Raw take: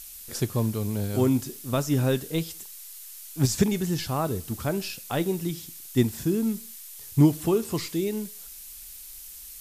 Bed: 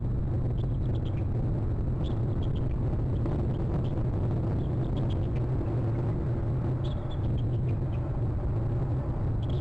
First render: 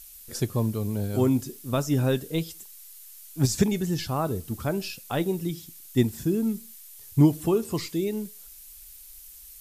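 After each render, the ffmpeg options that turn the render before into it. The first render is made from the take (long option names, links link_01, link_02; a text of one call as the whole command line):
ffmpeg -i in.wav -af "afftdn=noise_reduction=6:noise_floor=-43" out.wav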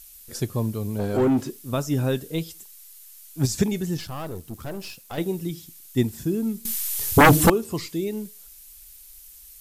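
ffmpeg -i in.wav -filter_complex "[0:a]asplit=3[link_01][link_02][link_03];[link_01]afade=type=out:start_time=0.98:duration=0.02[link_04];[link_02]asplit=2[link_05][link_06];[link_06]highpass=frequency=720:poles=1,volume=23dB,asoftclip=type=tanh:threshold=-12dB[link_07];[link_05][link_07]amix=inputs=2:normalize=0,lowpass=frequency=1000:poles=1,volume=-6dB,afade=type=in:start_time=0.98:duration=0.02,afade=type=out:start_time=1.49:duration=0.02[link_08];[link_03]afade=type=in:start_time=1.49:duration=0.02[link_09];[link_04][link_08][link_09]amix=inputs=3:normalize=0,asettb=1/sr,asplit=3[link_10][link_11][link_12];[link_10]atrim=end=3.974[link_13];[link_11]atrim=start=3.97:end=5.18,asetpts=PTS-STARTPTS,afade=type=in:duration=0.004:curve=qsin,afade=type=out:start_time=1.206:duration=0.004:curve=qsin,aeval=exprs='(tanh(28.2*val(0)+0.65)-tanh(0.65))/28.2':channel_layout=same[link_14];[link_12]atrim=start=5.176[link_15];[link_13][link_14]acrossfade=duration=0.004:curve1=hsin:curve2=qsin[link_16];[link_16][link_15]acrossfade=duration=0.004:curve1=qsin:curve2=hsin,asettb=1/sr,asplit=3[link_17][link_18][link_19];[link_17]atrim=end=6.654[link_20];[link_18]atrim=start=6.65:end=7.5,asetpts=PTS-STARTPTS,afade=type=in:duration=0.004:curve=qsin,afade=type=out:start_time=0.846:duration=0.004:curve=qsin,aeval=exprs='0.376*sin(PI/2*5.62*val(0)/0.376)':channel_layout=same[link_21];[link_19]atrim=start=7.496[link_22];[link_20][link_21]acrossfade=duration=0.004:curve1=hsin:curve2=qsin[link_23];[link_23][link_22]acrossfade=duration=0.004:curve1=qsin:curve2=hsin" out.wav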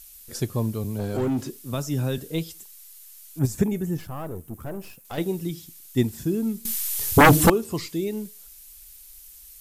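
ffmpeg -i in.wav -filter_complex "[0:a]asettb=1/sr,asplit=3[link_01][link_02][link_03];[link_01]atrim=end=0.844[link_04];[link_02]atrim=start=0.84:end=2.18,asetpts=PTS-STARTPTS,afade=type=in:duration=0.004:curve=qsin,afade=type=out:start_time=1.336:duration=0.004:curve=qsin,acrossover=split=160|3000[link_05][link_06][link_07];[link_06]acompressor=threshold=-33dB:ratio=1.5:attack=3.2:release=140:knee=2.83:detection=peak[link_08];[link_05][link_08][link_07]amix=inputs=3:normalize=0[link_09];[link_03]atrim=start=2.176[link_10];[link_04][link_09]acrossfade=duration=0.004:curve1=hsin:curve2=qsin[link_11];[link_11][link_10]acrossfade=duration=0.004:curve1=qsin:curve2=hsin,asettb=1/sr,asplit=3[link_12][link_13][link_14];[link_12]atrim=end=3.394[link_15];[link_13]atrim=start=3.39:end=5.05,asetpts=PTS-STARTPTS,afade=type=in:duration=0.004:curve=qsin,afade=type=out:start_time=1.656:duration=0.004:curve=qsin,equalizer=frequency=4400:width_type=o:width=1.5:gain=-14[link_16];[link_14]atrim=start=5.046[link_17];[link_15][link_16]acrossfade=duration=0.004:curve1=hsin:curve2=qsin[link_18];[link_18][link_17]acrossfade=duration=0.004:curve1=qsin:curve2=hsin" out.wav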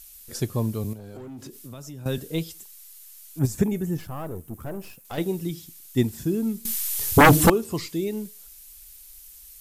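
ffmpeg -i in.wav -filter_complex "[0:a]asettb=1/sr,asplit=3[link_01][link_02][link_03];[link_01]atrim=end=0.934[link_04];[link_02]atrim=start=0.93:end=2.06,asetpts=PTS-STARTPTS,afade=type=in:duration=0.004:curve=qsin,afade=type=out:start_time=1.126:duration=0.004:curve=qsin,acompressor=threshold=-36dB:ratio=8:attack=3.2:release=140:knee=1:detection=peak[link_05];[link_03]atrim=start=2.056[link_06];[link_04][link_05]acrossfade=duration=0.004:curve1=hsin:curve2=qsin[link_07];[link_07][link_06]acrossfade=duration=0.004:curve1=qsin:curve2=hsin" out.wav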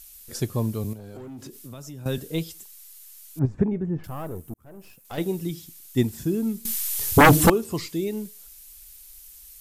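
ffmpeg -i in.wav -filter_complex "[0:a]asettb=1/sr,asplit=3[link_01][link_02][link_03];[link_01]atrim=end=3.394[link_04];[link_02]atrim=start=3.39:end=4.04,asetpts=PTS-STARTPTS,afade=type=in:duration=0.004:curve=qsin,afade=type=out:start_time=0.646:duration=0.004:curve=qsin,lowpass=1400[link_05];[link_03]atrim=start=4.036[link_06];[link_04][link_05]acrossfade=duration=0.004:curve1=hsin:curve2=qsin[link_07];[link_07][link_06]acrossfade=duration=0.004:curve1=qsin:curve2=hsin,asplit=2[link_08][link_09];[link_08]atrim=end=4.54,asetpts=PTS-STARTPTS,afade=type=out:start_time=4.536:duration=0.004:curve=hsin[link_10];[link_09]atrim=start=4.54,asetpts=PTS-STARTPTS,afade=type=in:duration=0.7[link_11];[link_10][link_11]concat=n=2:v=0:a=1" out.wav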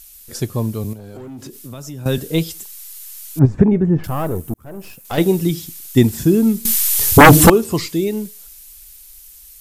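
ffmpeg -i in.wav -af "dynaudnorm=framelen=350:gausssize=13:maxgain=11.5dB,alimiter=level_in=4.5dB:limit=-1dB:release=50:level=0:latency=1" out.wav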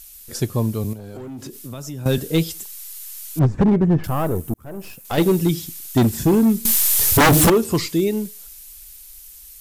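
ffmpeg -i in.wav -af "volume=11dB,asoftclip=hard,volume=-11dB" out.wav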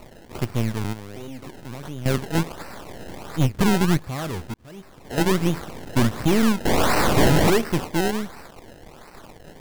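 ffmpeg -i in.wav -af "aeval=exprs='if(lt(val(0),0),0.251*val(0),val(0))':channel_layout=same,acrusher=samples=26:mix=1:aa=0.000001:lfo=1:lforange=26:lforate=1.4" out.wav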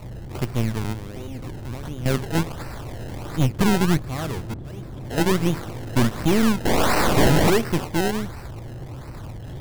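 ffmpeg -i in.wav -i bed.wav -filter_complex "[1:a]volume=-7dB[link_01];[0:a][link_01]amix=inputs=2:normalize=0" out.wav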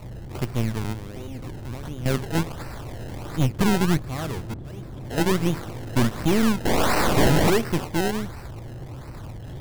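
ffmpeg -i in.wav -af "volume=-1.5dB" out.wav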